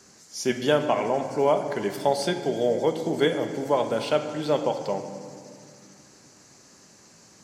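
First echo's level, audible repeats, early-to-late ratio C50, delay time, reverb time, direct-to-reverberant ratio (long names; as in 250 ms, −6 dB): no echo audible, no echo audible, 8.0 dB, no echo audible, 2.2 s, 6.5 dB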